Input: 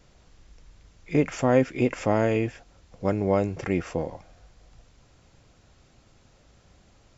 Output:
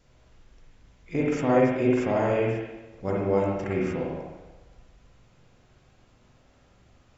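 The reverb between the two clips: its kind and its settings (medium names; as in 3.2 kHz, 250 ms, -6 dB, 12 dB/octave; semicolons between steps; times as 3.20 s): spring tank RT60 1.1 s, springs 43/51/59 ms, chirp 75 ms, DRR -4 dB; trim -6 dB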